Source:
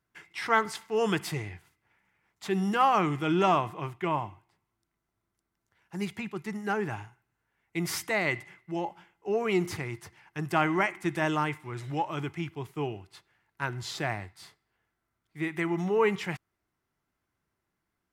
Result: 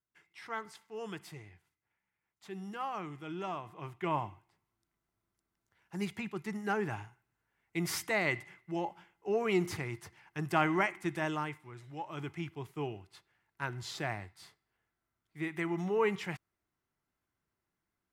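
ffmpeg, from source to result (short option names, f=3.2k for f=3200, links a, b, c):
-af "volume=6.5dB,afade=t=in:st=3.63:d=0.55:silence=0.251189,afade=t=out:st=10.75:d=1.16:silence=0.266073,afade=t=in:st=11.91:d=0.42:silence=0.334965"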